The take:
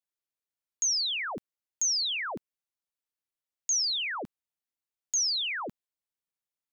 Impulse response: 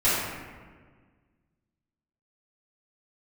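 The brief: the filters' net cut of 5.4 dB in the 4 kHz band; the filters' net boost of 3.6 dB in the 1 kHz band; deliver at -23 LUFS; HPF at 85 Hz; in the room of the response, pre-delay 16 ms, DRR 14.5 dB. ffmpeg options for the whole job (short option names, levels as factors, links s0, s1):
-filter_complex "[0:a]highpass=85,equalizer=f=1000:t=o:g=5,equalizer=f=4000:t=o:g=-7.5,asplit=2[s0][s1];[1:a]atrim=start_sample=2205,adelay=16[s2];[s1][s2]afir=irnorm=-1:irlink=0,volume=0.0299[s3];[s0][s3]amix=inputs=2:normalize=0,volume=2.66"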